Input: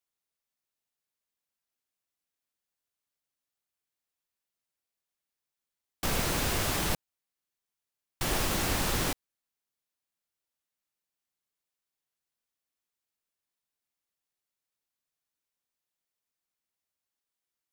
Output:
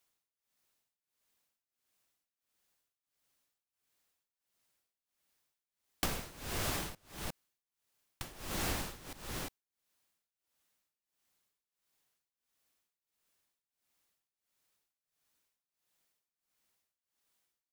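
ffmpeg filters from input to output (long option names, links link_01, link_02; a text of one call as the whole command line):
ffmpeg -i in.wav -filter_complex "[0:a]asplit=2[link_01][link_02];[link_02]aecho=0:1:355:0.119[link_03];[link_01][link_03]amix=inputs=2:normalize=0,acompressor=threshold=-42dB:ratio=8,tremolo=f=1.5:d=0.9,volume=10dB" out.wav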